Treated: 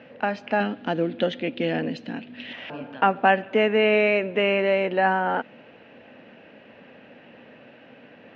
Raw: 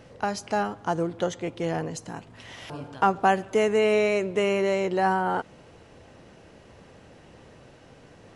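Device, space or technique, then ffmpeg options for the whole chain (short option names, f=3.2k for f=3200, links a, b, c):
kitchen radio: -filter_complex "[0:a]asettb=1/sr,asplit=3[a][b][c];[a]atrim=end=0.604[d];[b]atrim=start=0.6:end=2.53,asetpts=PTS-STARTPTS,afade=t=in:d=0.004:c=qsin,afade=t=out:st=1.926:d=0.004:c=qsin,equalizer=f=250:t=o:w=1:g=7,equalizer=f=1k:t=o:w=1:g=-7,equalizer=f=4k:t=o:w=1:g=9[e];[c]atrim=start=2.526[f];[d][e]acrossfade=d=0.004:c1=hsin:c2=qsin[g];[g][f]acrossfade=d=0.004:c1=qsin:c2=hsin,highpass=210,equalizer=f=240:t=q:w=4:g=9,equalizer=f=370:t=q:w=4:g=-4,equalizer=f=570:t=q:w=4:g=4,equalizer=f=1.1k:t=q:w=4:g=-4,equalizer=f=1.7k:t=q:w=4:g=6,equalizer=f=2.6k:t=q:w=4:g=8,lowpass=f=3.4k:w=0.5412,lowpass=f=3.4k:w=1.3066,volume=1.5dB"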